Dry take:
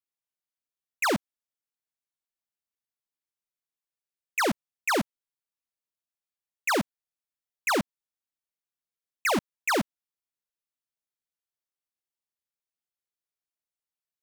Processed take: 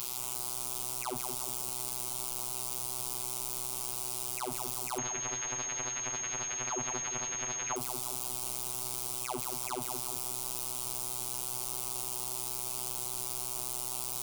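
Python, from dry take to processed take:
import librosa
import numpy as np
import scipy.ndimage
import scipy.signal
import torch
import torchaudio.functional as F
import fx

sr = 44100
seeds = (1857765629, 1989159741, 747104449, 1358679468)

y = np.sign(x) * np.sqrt(np.mean(np.square(x)))
y = fx.fixed_phaser(y, sr, hz=350.0, stages=8)
y = fx.robotise(y, sr, hz=125.0)
y = fx.echo_feedback(y, sr, ms=176, feedback_pct=51, wet_db=-7.5)
y = fx.pwm(y, sr, carrier_hz=6500.0, at=(4.98, 7.76))
y = F.gain(torch.from_numpy(y), 4.0).numpy()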